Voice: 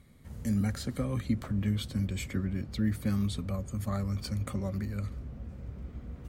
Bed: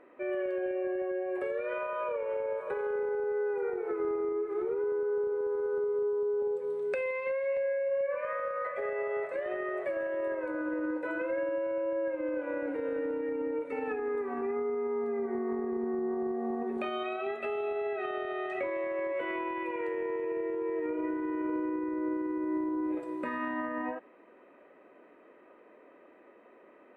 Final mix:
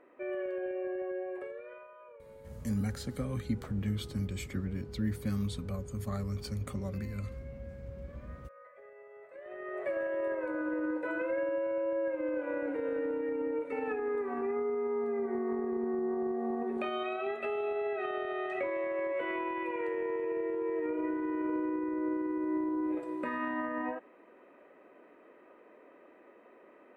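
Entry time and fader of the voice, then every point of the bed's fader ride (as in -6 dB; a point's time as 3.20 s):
2.20 s, -3.5 dB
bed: 1.23 s -3.5 dB
1.99 s -20 dB
9.17 s -20 dB
9.89 s -0.5 dB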